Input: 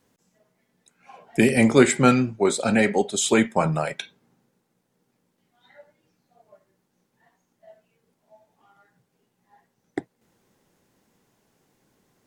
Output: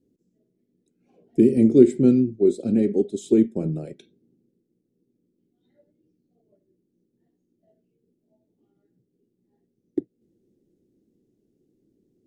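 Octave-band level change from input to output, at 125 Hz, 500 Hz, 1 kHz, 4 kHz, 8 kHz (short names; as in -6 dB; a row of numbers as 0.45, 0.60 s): -2.0 dB, +1.0 dB, under -20 dB, under -15 dB, under -15 dB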